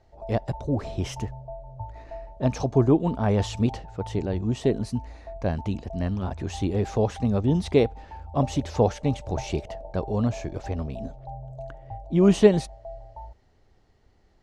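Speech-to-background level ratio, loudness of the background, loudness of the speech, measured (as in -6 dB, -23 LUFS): 15.0 dB, -41.0 LUFS, -26.0 LUFS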